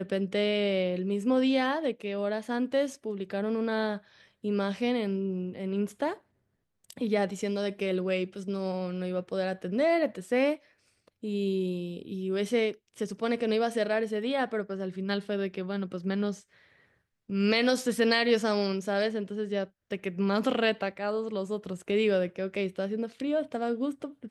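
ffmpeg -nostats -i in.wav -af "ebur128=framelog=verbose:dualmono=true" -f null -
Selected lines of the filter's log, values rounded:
Integrated loudness:
  I:         -26.7 LUFS
  Threshold: -37.0 LUFS
Loudness range:
  LRA:         4.2 LU
  Threshold: -47.2 LUFS
  LRA low:   -29.1 LUFS
  LRA high:  -24.9 LUFS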